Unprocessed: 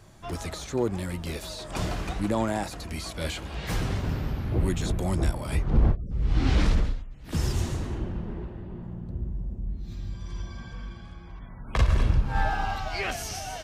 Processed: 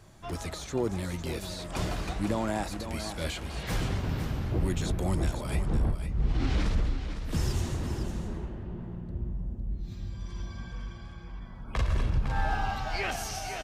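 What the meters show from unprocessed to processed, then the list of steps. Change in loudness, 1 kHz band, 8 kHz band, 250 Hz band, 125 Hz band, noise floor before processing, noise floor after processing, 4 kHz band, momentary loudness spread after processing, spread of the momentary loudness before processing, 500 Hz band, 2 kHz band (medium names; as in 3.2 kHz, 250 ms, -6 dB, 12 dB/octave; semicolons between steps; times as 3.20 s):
-3.0 dB, -2.5 dB, -2.0 dB, -2.5 dB, -3.0 dB, -42 dBFS, -43 dBFS, -2.0 dB, 10 LU, 14 LU, -2.5 dB, -2.0 dB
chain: peak limiter -17 dBFS, peak gain reduction 6 dB; on a send: delay 506 ms -9 dB; on the sum: trim -2 dB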